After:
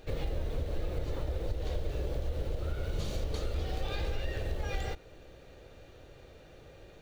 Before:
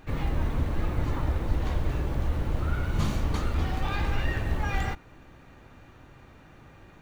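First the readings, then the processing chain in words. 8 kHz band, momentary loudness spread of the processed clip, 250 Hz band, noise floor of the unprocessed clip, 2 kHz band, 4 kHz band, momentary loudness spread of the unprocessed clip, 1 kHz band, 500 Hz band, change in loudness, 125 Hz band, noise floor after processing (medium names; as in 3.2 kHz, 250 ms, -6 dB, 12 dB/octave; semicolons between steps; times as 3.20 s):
no reading, 18 LU, -10.0 dB, -53 dBFS, -9.5 dB, -3.0 dB, 2 LU, -10.5 dB, -0.5 dB, -7.0 dB, -7.5 dB, -54 dBFS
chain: compression, threshold -28 dBFS, peak gain reduction 10.5 dB; ten-band graphic EQ 125 Hz -4 dB, 250 Hz -9 dB, 500 Hz +11 dB, 1 kHz -11 dB, 2 kHz -4 dB, 4 kHz +5 dB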